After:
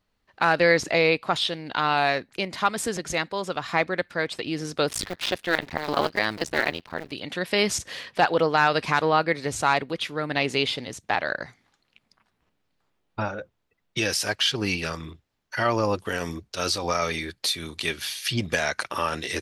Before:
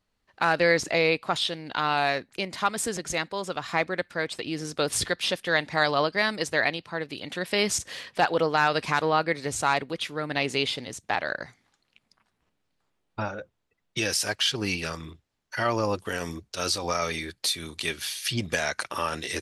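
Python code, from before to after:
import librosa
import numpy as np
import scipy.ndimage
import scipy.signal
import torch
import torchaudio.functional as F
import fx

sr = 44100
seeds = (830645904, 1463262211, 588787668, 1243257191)

y = fx.cycle_switch(x, sr, every=2, mode='muted', at=(4.89, 7.12))
y = fx.peak_eq(y, sr, hz=8600.0, db=-4.5, octaves=1.1)
y = y * 10.0 ** (2.5 / 20.0)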